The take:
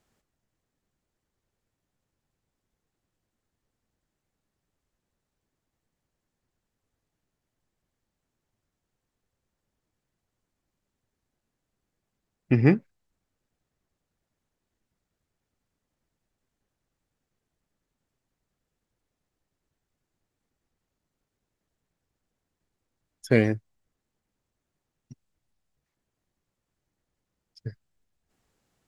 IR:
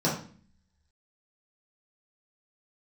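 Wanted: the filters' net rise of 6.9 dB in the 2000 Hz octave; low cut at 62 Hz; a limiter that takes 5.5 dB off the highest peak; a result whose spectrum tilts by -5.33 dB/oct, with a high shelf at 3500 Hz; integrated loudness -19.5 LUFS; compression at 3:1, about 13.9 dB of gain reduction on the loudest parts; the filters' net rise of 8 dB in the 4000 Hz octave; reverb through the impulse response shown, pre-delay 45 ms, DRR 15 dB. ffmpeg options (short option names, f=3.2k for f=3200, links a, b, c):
-filter_complex "[0:a]highpass=62,equalizer=f=2k:t=o:g=5,highshelf=f=3.5k:g=6,equalizer=f=4k:t=o:g=5,acompressor=threshold=-32dB:ratio=3,alimiter=limit=-21dB:level=0:latency=1,asplit=2[a][b];[1:a]atrim=start_sample=2205,adelay=45[c];[b][c]afir=irnorm=-1:irlink=0,volume=-27dB[d];[a][d]amix=inputs=2:normalize=0,volume=19.5dB"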